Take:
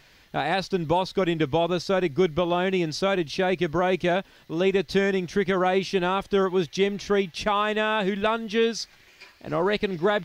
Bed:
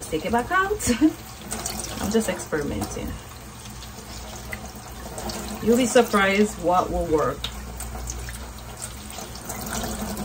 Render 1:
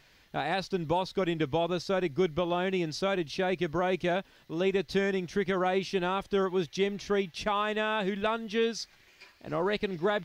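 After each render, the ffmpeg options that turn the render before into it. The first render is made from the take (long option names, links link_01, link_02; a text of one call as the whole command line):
ffmpeg -i in.wav -af "volume=-5.5dB" out.wav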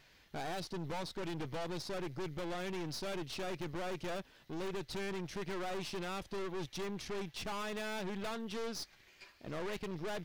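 ffmpeg -i in.wav -af "aeval=exprs='(tanh(79.4*val(0)+0.65)-tanh(0.65))/79.4':channel_layout=same" out.wav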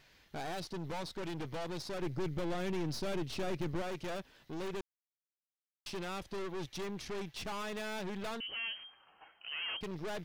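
ffmpeg -i in.wav -filter_complex "[0:a]asettb=1/sr,asplit=3[link_01][link_02][link_03];[link_01]atrim=end=2.024[link_04];[link_02]atrim=start=2.02:end=3.82,asetpts=PTS-STARTPTS,afade=type=in:duration=0.004:curve=qsin,afade=type=out:start_time=1.796:duration=0.004:curve=qsin,lowshelf=frequency=470:gain=6.5[link_05];[link_03]atrim=start=3.816[link_06];[link_04][link_05]acrossfade=duration=0.004:curve1=hsin:curve2=qsin[link_07];[link_07][link_06]acrossfade=duration=0.004:curve1=qsin:curve2=hsin,asettb=1/sr,asplit=3[link_08][link_09][link_10];[link_08]atrim=end=8.404[link_11];[link_09]atrim=start=8.4:end=9.81,asetpts=PTS-STARTPTS,afade=type=in:duration=0.004:curve=qsin,afade=type=out:start_time=1.406:duration=0.004:curve=qsin,lowpass=frequency=2700:width_type=q:width=0.5098,lowpass=frequency=2700:width_type=q:width=0.6013,lowpass=frequency=2700:width_type=q:width=0.9,lowpass=frequency=2700:width_type=q:width=2.563,afreqshift=-3200[link_12];[link_10]atrim=start=9.806[link_13];[link_11][link_12]acrossfade=duration=0.004:curve1=hsin:curve2=qsin[link_14];[link_14][link_13]acrossfade=duration=0.004:curve1=qsin:curve2=hsin,asplit=3[link_15][link_16][link_17];[link_15]atrim=end=4.81,asetpts=PTS-STARTPTS,afade=type=out:start_time=4.806:duration=0.004:curve=hsin[link_18];[link_16]atrim=start=4.81:end=5.86,asetpts=PTS-STARTPTS,volume=0[link_19];[link_17]atrim=start=5.86,asetpts=PTS-STARTPTS,afade=type=in:duration=0.004:curve=hsin[link_20];[link_18][link_19][link_20]concat=n=3:v=0:a=1" out.wav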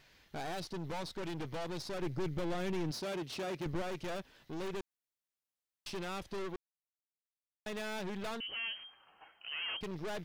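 ffmpeg -i in.wav -filter_complex "[0:a]asettb=1/sr,asplit=3[link_01][link_02][link_03];[link_01]atrim=end=2.914[link_04];[link_02]atrim=start=2.91:end=3.66,asetpts=PTS-STARTPTS,afade=type=in:duration=0.004:curve=qsin,afade=type=out:start_time=0.746:duration=0.004:curve=qsin,highpass=frequency=250:poles=1[link_05];[link_03]atrim=start=3.656[link_06];[link_04][link_05]acrossfade=duration=0.004:curve1=hsin:curve2=qsin[link_07];[link_07][link_06]acrossfade=duration=0.004:curve1=qsin:curve2=hsin,asplit=3[link_08][link_09][link_10];[link_08]atrim=end=6.56,asetpts=PTS-STARTPTS,afade=type=out:start_time=6.556:duration=0.004:curve=hsin[link_11];[link_09]atrim=start=6.56:end=7.66,asetpts=PTS-STARTPTS,volume=0[link_12];[link_10]atrim=start=7.66,asetpts=PTS-STARTPTS,afade=type=in:duration=0.004:curve=hsin[link_13];[link_11][link_12][link_13]concat=n=3:v=0:a=1" out.wav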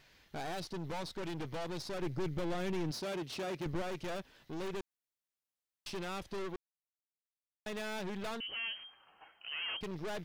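ffmpeg -i in.wav -af anull out.wav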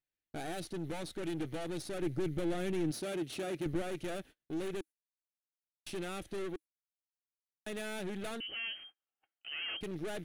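ffmpeg -i in.wav -af "agate=range=-34dB:threshold=-52dB:ratio=16:detection=peak,equalizer=frequency=315:width_type=o:width=0.33:gain=7,equalizer=frequency=1000:width_type=o:width=0.33:gain=-11,equalizer=frequency=5000:width_type=o:width=0.33:gain=-7,equalizer=frequency=10000:width_type=o:width=0.33:gain=11" out.wav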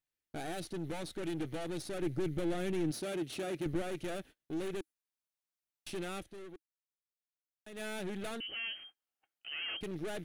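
ffmpeg -i in.wav -filter_complex "[0:a]asplit=3[link_01][link_02][link_03];[link_01]atrim=end=6.31,asetpts=PTS-STARTPTS,afade=type=out:start_time=6.19:duration=0.12:curve=qua:silence=0.334965[link_04];[link_02]atrim=start=6.31:end=7.7,asetpts=PTS-STARTPTS,volume=-9.5dB[link_05];[link_03]atrim=start=7.7,asetpts=PTS-STARTPTS,afade=type=in:duration=0.12:curve=qua:silence=0.334965[link_06];[link_04][link_05][link_06]concat=n=3:v=0:a=1" out.wav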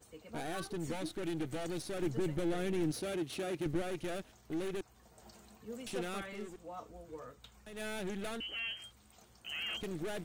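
ffmpeg -i in.wav -i bed.wav -filter_complex "[1:a]volume=-26.5dB[link_01];[0:a][link_01]amix=inputs=2:normalize=0" out.wav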